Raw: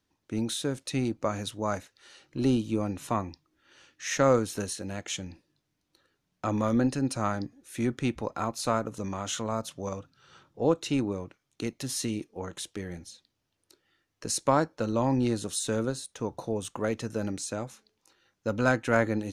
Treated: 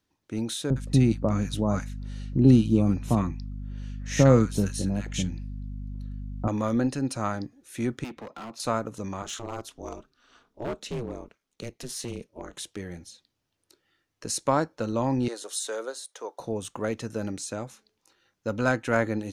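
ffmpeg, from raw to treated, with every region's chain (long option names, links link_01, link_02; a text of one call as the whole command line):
ffmpeg -i in.wav -filter_complex "[0:a]asettb=1/sr,asplit=3[link_01][link_02][link_03];[link_01]atrim=end=0.704[link_04];[link_02]atrim=start=0.7:end=6.48,asetpts=PTS-STARTPTS,afade=type=in:duration=0.004:curve=qsin,afade=type=out:start_time=5.776:duration=0.004:curve=qsin,equalizer=frequency=150:width=0.75:gain=13,aeval=exprs='val(0)+0.02*(sin(2*PI*50*n/s)+sin(2*PI*2*50*n/s)/2+sin(2*PI*3*50*n/s)/3+sin(2*PI*4*50*n/s)/4+sin(2*PI*5*50*n/s)/5)':channel_layout=same,acrossover=split=1100[link_05][link_06];[link_06]adelay=60[link_07];[link_05][link_07]amix=inputs=2:normalize=0,atrim=end_sample=254898[link_08];[link_03]atrim=start=6.476[link_09];[link_04][link_08]acrossfade=duration=0.004:curve1=hsin:curve2=qsin[link_10];[link_10][link_09]acrossfade=duration=0.004:curve1=qsin:curve2=hsin,asettb=1/sr,asplit=3[link_11][link_12][link_13];[link_11]atrim=end=8.044[link_14];[link_12]atrim=start=8.04:end=8.6,asetpts=PTS-STARTPTS,afade=type=in:duration=0.004:curve=qsin,afade=type=out:start_time=0.556:duration=0.004:curve=qsin,acrossover=split=160 4900:gain=0.0708 1 0.2[link_15][link_16][link_17];[link_15][link_16][link_17]amix=inputs=3:normalize=0,acrossover=split=260|3000[link_18][link_19][link_20];[link_19]acompressor=threshold=-31dB:ratio=6:attack=3.2:release=140:knee=2.83:detection=peak[link_21];[link_18][link_21][link_20]amix=inputs=3:normalize=0,asoftclip=type=hard:threshold=-35.5dB[link_22];[link_13]atrim=start=8.596[link_23];[link_14][link_22]acrossfade=duration=0.004:curve1=hsin:curve2=qsin[link_24];[link_24][link_23]acrossfade=duration=0.004:curve1=qsin:curve2=hsin,asettb=1/sr,asplit=3[link_25][link_26][link_27];[link_25]atrim=end=9.224[link_28];[link_26]atrim=start=9.22:end=12.54,asetpts=PTS-STARTPTS,afade=type=in:duration=0.004:curve=qsin,afade=type=out:start_time=3.316:duration=0.004:curve=qsin,highpass=120,aeval=exprs='val(0)*sin(2*PI*120*n/s)':channel_layout=same,asoftclip=type=hard:threshold=-26.5dB[link_29];[link_27]atrim=start=12.536[link_30];[link_28][link_29]acrossfade=duration=0.004:curve1=hsin:curve2=qsin[link_31];[link_31][link_30]acrossfade=duration=0.004:curve1=qsin:curve2=hsin,asettb=1/sr,asplit=3[link_32][link_33][link_34];[link_32]atrim=end=15.284[link_35];[link_33]atrim=start=15.28:end=16.4,asetpts=PTS-STARTPTS,afade=type=in:duration=0.004:curve=qsin,afade=type=out:start_time=1.116:duration=0.004:curve=qsin,highpass=frequency=430:width=0.5412,highpass=frequency=430:width=1.3066,bandreject=frequency=2600:width=11[link_36];[link_34]atrim=start=16.396[link_37];[link_35][link_36]acrossfade=duration=0.004:curve1=hsin:curve2=qsin[link_38];[link_38][link_37]acrossfade=duration=0.004:curve1=qsin:curve2=hsin" out.wav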